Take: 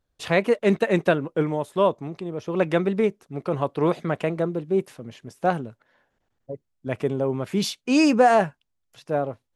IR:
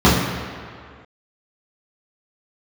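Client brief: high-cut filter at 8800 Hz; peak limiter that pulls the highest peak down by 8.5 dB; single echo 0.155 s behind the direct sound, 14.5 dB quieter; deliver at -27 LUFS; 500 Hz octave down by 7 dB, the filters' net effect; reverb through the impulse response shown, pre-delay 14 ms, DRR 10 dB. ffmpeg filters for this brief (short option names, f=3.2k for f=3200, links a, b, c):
-filter_complex "[0:a]lowpass=8.8k,equalizer=f=500:t=o:g=-9,alimiter=limit=-17dB:level=0:latency=1,aecho=1:1:155:0.188,asplit=2[a][b];[1:a]atrim=start_sample=2205,adelay=14[c];[b][c]afir=irnorm=-1:irlink=0,volume=-37dB[d];[a][d]amix=inputs=2:normalize=0"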